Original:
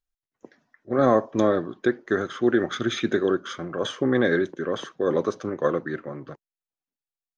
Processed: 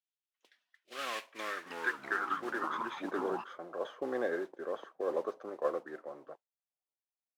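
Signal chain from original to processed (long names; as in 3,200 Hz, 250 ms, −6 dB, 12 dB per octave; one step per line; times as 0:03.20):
0:01.25–0:03.44: delay with pitch and tempo change per echo 281 ms, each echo −4 semitones, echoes 3
high-pass filter 380 Hz 6 dB per octave
noise that follows the level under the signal 12 dB
band-pass filter sweep 3,100 Hz → 670 Hz, 0:00.80–0:03.33
dynamic equaliser 630 Hz, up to −5 dB, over −46 dBFS, Q 2.1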